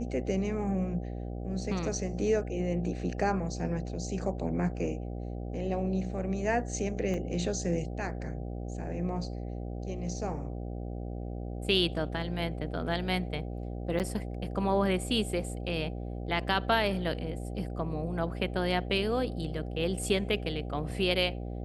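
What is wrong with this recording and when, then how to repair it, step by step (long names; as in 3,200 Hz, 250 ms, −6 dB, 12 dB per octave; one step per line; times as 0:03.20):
mains buzz 60 Hz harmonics 13 −37 dBFS
0:07.14: drop-out 2.3 ms
0:13.99–0:14.00: drop-out 8.3 ms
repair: hum removal 60 Hz, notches 13
repair the gap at 0:07.14, 2.3 ms
repair the gap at 0:13.99, 8.3 ms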